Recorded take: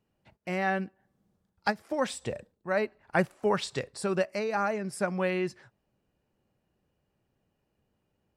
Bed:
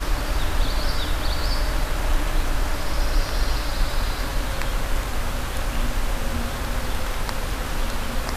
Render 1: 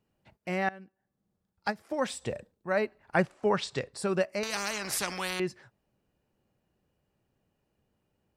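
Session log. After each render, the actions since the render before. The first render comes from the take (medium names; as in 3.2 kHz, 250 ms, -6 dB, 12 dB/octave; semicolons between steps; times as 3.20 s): 0.69–2.23 s: fade in, from -20.5 dB; 3.18–3.92 s: low-pass 7.4 kHz; 4.43–5.40 s: spectrum-flattening compressor 4:1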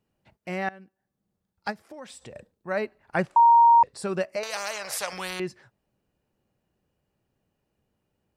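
1.79–2.36 s: compression 2.5:1, threshold -44 dBFS; 3.36–3.83 s: bleep 934 Hz -12 dBFS; 4.36–5.13 s: resonant low shelf 410 Hz -8.5 dB, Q 3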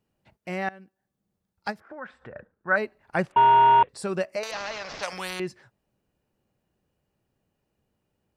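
1.80–2.76 s: resonant low-pass 1.5 kHz, resonance Q 5.3; 3.32–3.89 s: CVSD coder 16 kbps; 4.51–5.03 s: CVSD coder 32 kbps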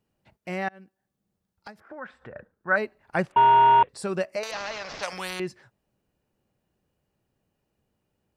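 0.68–1.83 s: compression 4:1, threshold -40 dBFS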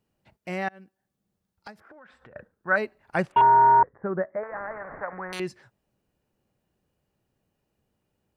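1.79–2.36 s: compression 12:1, threshold -46 dBFS; 3.41–5.33 s: steep low-pass 1.9 kHz 72 dB/octave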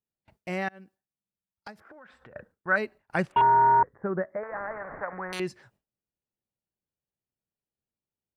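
gate with hold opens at -48 dBFS; dynamic bell 710 Hz, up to -4 dB, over -31 dBFS, Q 0.94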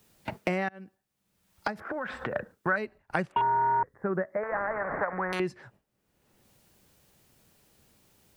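three bands compressed up and down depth 100%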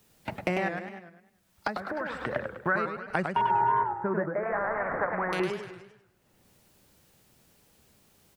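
delay 308 ms -17 dB; modulated delay 100 ms, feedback 41%, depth 197 cents, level -5.5 dB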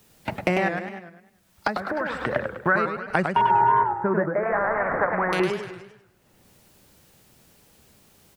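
trim +6 dB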